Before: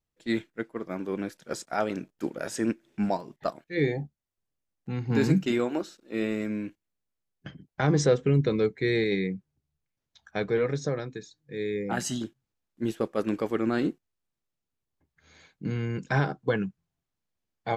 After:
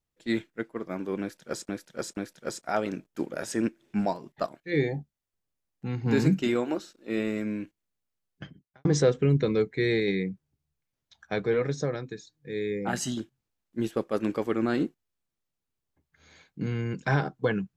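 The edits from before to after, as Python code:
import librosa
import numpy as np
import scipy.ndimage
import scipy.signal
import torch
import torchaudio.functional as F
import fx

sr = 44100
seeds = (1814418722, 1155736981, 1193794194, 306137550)

y = fx.edit(x, sr, fx.repeat(start_s=1.21, length_s=0.48, count=3),
    fx.fade_out_span(start_s=7.49, length_s=0.4, curve='qua'), tone=tone)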